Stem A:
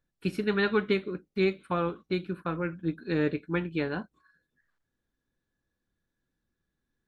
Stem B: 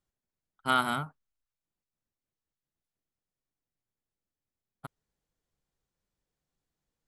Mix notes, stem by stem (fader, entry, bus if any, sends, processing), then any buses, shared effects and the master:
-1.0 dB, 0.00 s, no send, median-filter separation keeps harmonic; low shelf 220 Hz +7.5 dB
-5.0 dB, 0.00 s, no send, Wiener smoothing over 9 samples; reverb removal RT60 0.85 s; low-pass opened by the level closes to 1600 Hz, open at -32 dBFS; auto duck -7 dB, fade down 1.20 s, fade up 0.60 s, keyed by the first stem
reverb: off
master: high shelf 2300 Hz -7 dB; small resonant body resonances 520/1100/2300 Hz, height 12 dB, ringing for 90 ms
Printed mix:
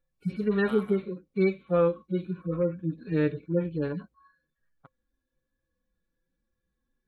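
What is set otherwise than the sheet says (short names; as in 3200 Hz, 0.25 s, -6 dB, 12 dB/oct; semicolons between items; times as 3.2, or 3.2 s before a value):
stem B -5.0 dB -> -11.5 dB; master: missing high shelf 2300 Hz -7 dB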